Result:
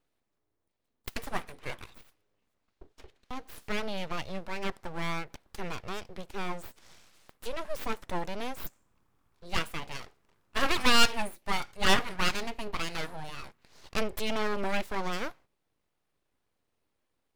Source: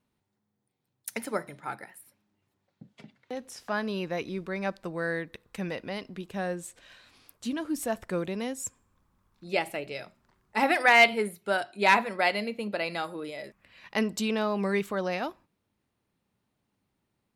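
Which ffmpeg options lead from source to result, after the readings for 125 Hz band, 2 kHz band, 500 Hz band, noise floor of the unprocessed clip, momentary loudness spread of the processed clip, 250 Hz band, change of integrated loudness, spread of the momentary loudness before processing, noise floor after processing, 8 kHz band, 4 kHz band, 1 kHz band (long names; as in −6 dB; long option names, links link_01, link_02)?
−1.5 dB, −5.5 dB, −6.5 dB, −80 dBFS, 18 LU, −5.5 dB, −3.5 dB, 17 LU, −80 dBFS, +0.5 dB, +3.5 dB, −4.0 dB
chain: -af "aeval=exprs='abs(val(0))':channel_layout=same"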